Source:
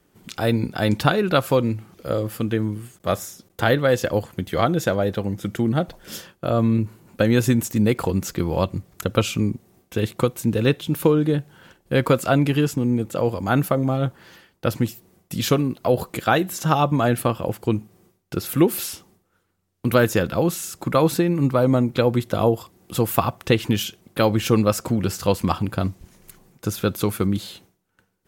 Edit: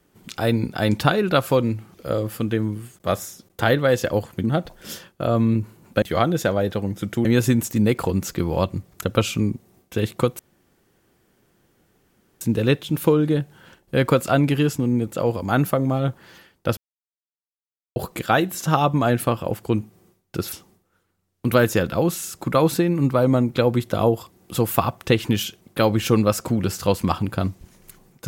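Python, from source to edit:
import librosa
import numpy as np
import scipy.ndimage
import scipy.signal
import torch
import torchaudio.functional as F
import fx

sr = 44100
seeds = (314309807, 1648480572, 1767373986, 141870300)

y = fx.edit(x, sr, fx.move(start_s=4.44, length_s=1.23, to_s=7.25),
    fx.insert_room_tone(at_s=10.39, length_s=2.02),
    fx.silence(start_s=14.75, length_s=1.19),
    fx.cut(start_s=18.5, length_s=0.42), tone=tone)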